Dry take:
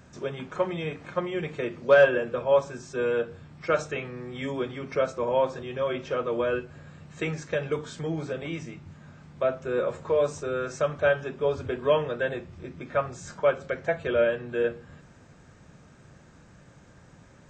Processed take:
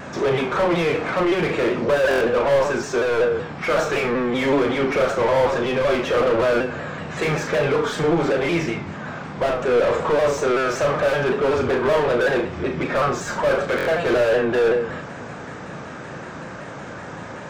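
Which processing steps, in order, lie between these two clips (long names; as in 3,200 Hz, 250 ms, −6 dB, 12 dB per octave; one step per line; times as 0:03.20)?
mid-hump overdrive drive 37 dB, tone 1,200 Hz, clips at −8 dBFS
on a send: flutter between parallel walls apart 6.2 metres, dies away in 0.34 s
on the sum: buffer that repeats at 0:02.09/0:13.76, samples 1,024, times 4
pitch modulation by a square or saw wave saw down 5.3 Hz, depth 100 cents
level −3.5 dB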